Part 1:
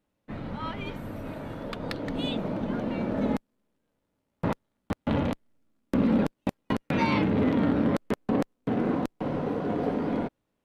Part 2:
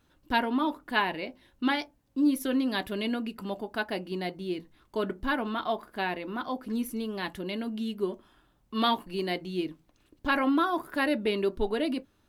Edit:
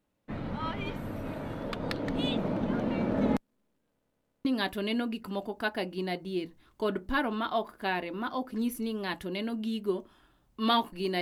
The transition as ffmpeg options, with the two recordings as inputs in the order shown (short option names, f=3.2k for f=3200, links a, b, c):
-filter_complex "[0:a]apad=whole_dur=11.21,atrim=end=11.21,asplit=5[a][b][c][d][e];[a]atrim=end=4.012[f];[b]atrim=start=3.898:end=4.012[g];[c]atrim=start=3.898:end=4.012[h];[d]atrim=start=3.898:end=4.012[i];[e]atrim=start=3.898:end=4.012[j];[1:a]atrim=start=2.588:end=9.35[k];[f][g]acrossfade=d=0.004:c1=hsin:c2=hsin[l];[l][h]acrossfade=d=0.004:c1=hsin:c2=hsin[m];[m][i]acrossfade=d=0.004:c1=hsin:c2=hsin[n];[n][j]acrossfade=d=0.004:c1=hsin:c2=hsin[o];[o][k]acrossfade=d=0.004:c1=hsin:c2=hsin"